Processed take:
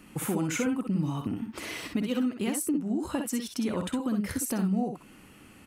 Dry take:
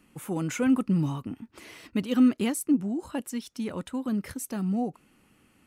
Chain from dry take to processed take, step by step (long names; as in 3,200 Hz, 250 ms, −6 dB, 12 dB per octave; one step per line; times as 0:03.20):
downward compressor 6 to 1, threshold −36 dBFS, peak gain reduction 18.5 dB
on a send: ambience of single reflections 53 ms −10 dB, 63 ms −6.5 dB
on the sum: level +8.5 dB